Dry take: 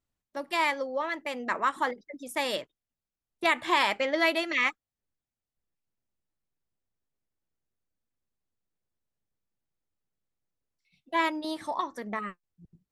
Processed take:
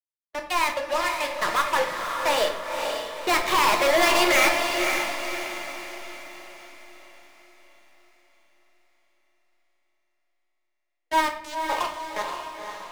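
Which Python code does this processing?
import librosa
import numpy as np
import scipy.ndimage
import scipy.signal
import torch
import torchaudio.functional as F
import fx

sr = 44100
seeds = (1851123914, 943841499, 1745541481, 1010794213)

p1 = fx.doppler_pass(x, sr, speed_mps=16, closest_m=7.4, pass_at_s=5.49)
p2 = scipy.signal.sosfilt(scipy.signal.butter(8, 380.0, 'highpass', fs=sr, output='sos'), p1)
p3 = fx.high_shelf(p2, sr, hz=4700.0, db=-9.0)
p4 = fx.fuzz(p3, sr, gain_db=49.0, gate_db=-53.0)
p5 = p3 + F.gain(torch.from_numpy(p4), -12.0).numpy()
p6 = fx.leveller(p5, sr, passes=3)
p7 = p6 + fx.echo_diffused(p6, sr, ms=521, feedback_pct=48, wet_db=-5, dry=0)
y = fx.room_shoebox(p7, sr, seeds[0], volume_m3=140.0, walls='mixed', distance_m=0.56)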